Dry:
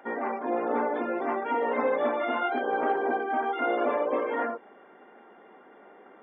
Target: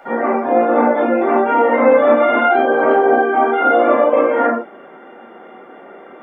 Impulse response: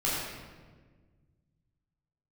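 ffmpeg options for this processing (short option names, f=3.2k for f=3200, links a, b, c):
-filter_complex "[1:a]atrim=start_sample=2205,atrim=end_sample=3528[a];[0:a][a]afir=irnorm=-1:irlink=0,acrossover=split=2900[b][c];[c]acompressor=threshold=-55dB:ratio=4:attack=1:release=60[d];[b][d]amix=inputs=2:normalize=0,volume=6.5dB"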